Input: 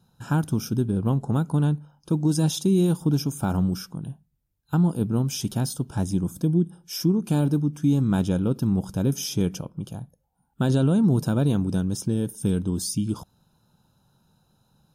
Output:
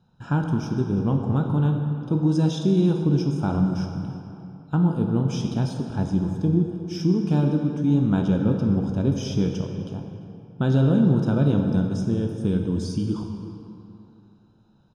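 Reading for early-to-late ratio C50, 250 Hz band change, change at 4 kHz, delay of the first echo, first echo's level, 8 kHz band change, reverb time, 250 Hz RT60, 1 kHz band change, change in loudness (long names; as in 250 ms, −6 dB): 4.5 dB, +1.5 dB, −4.0 dB, 345 ms, −19.5 dB, below −10 dB, 2.8 s, 2.7 s, +1.5 dB, +1.5 dB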